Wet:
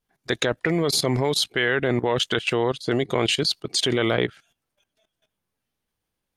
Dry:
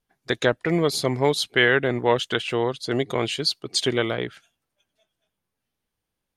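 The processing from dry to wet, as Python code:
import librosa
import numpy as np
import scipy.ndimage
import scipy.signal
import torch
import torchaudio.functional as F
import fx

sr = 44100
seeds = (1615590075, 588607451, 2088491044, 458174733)

y = fx.level_steps(x, sr, step_db=15)
y = F.gain(torch.from_numpy(y), 8.5).numpy()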